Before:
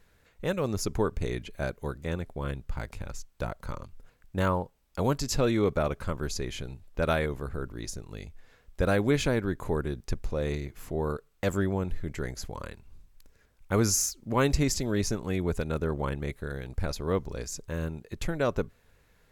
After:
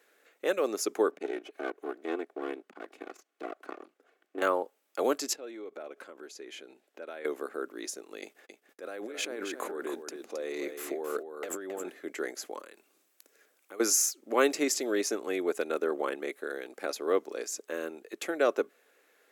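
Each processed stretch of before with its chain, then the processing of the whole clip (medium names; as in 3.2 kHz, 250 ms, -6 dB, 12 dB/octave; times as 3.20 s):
1.11–4.42 s: comb filter that takes the minimum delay 2.7 ms + low-pass 2.4 kHz 6 dB/octave + transformer saturation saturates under 200 Hz
5.33–7.25 s: band-stop 1.2 kHz, Q 10 + compression 10:1, threshold -38 dBFS + treble shelf 6.9 kHz -8.5 dB
8.21–11.90 s: gate -50 dBFS, range -40 dB + compressor with a negative ratio -35 dBFS + delay 269 ms -7.5 dB
12.59–13.80 s: treble shelf 4.3 kHz +6 dB + compression 5:1, threshold -43 dBFS
whole clip: steep high-pass 300 Hz 36 dB/octave; peaking EQ 4.5 kHz -4 dB 0.81 oct; band-stop 960 Hz, Q 5.9; trim +2.5 dB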